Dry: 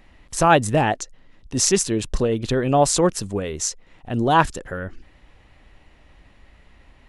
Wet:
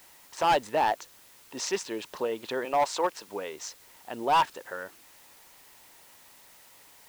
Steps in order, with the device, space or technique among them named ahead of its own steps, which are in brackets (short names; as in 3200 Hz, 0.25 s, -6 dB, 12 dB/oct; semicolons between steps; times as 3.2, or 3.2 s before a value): 2.65–3.28 Bessel high-pass 360 Hz; drive-through speaker (BPF 480–3800 Hz; bell 920 Hz +9 dB 0.23 oct; hard clip -13.5 dBFS, distortion -8 dB; white noise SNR 24 dB); gain -5 dB